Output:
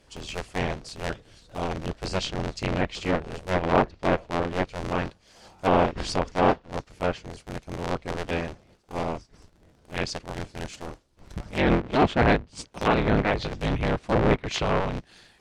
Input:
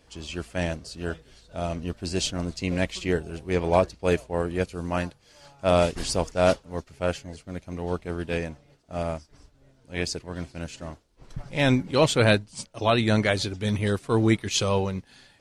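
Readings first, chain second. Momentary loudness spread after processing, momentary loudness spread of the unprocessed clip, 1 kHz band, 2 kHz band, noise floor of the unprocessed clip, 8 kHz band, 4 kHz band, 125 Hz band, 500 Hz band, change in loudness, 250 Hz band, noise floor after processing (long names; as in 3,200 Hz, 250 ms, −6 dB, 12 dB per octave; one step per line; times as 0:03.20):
15 LU, 15 LU, +4.0 dB, +0.5 dB, −60 dBFS, −7.5 dB, −3.5 dB, −2.0 dB, −1.5 dB, −0.5 dB, −0.5 dB, −60 dBFS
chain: sub-harmonics by changed cycles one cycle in 3, inverted
treble cut that deepens with the level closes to 2,200 Hz, closed at −19.5 dBFS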